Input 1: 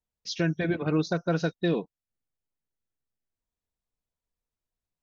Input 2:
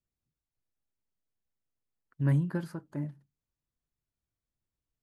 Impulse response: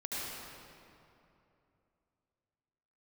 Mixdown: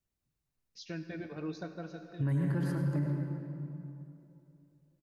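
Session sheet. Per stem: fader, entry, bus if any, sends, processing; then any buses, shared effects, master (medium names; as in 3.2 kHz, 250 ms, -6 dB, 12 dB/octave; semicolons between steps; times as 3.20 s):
-10.5 dB, 0.50 s, send -11.5 dB, feedback comb 64 Hz, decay 0.19 s, harmonics odd, mix 60%; auto duck -14 dB, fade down 0.40 s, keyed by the second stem
-0.5 dB, 0.00 s, send -3.5 dB, none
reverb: on, RT60 2.8 s, pre-delay 67 ms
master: band-stop 3.3 kHz, Q 19; peak limiter -24 dBFS, peak gain reduction 10 dB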